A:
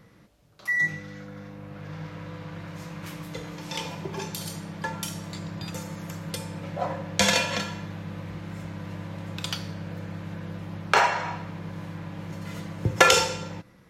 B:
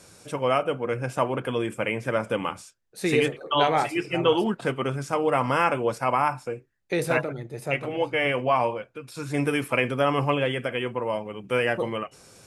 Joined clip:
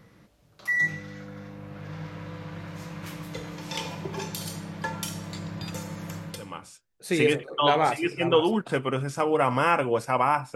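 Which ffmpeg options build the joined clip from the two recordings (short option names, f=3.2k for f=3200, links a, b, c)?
-filter_complex "[0:a]apad=whole_dur=10.55,atrim=end=10.55,atrim=end=6.8,asetpts=PTS-STARTPTS[a];[1:a]atrim=start=2.11:end=6.48,asetpts=PTS-STARTPTS[b];[a][b]acrossfade=d=0.62:c1=qua:c2=qua"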